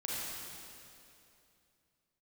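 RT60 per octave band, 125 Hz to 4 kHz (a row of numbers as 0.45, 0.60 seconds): 3.1, 2.9, 2.9, 2.6, 2.5, 2.4 seconds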